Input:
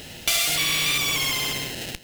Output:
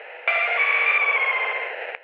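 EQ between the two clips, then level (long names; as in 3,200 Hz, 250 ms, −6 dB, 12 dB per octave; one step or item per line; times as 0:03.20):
Chebyshev band-pass filter 470–2,400 Hz, order 4
+8.5 dB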